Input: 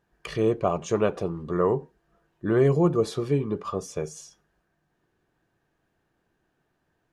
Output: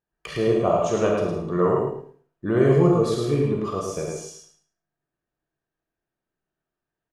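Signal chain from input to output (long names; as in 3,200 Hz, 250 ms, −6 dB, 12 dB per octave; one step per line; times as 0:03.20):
noise gate −58 dBFS, range −17 dB
repeating echo 108 ms, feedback 21%, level −4 dB
convolution reverb RT60 0.40 s, pre-delay 5 ms, DRR 1 dB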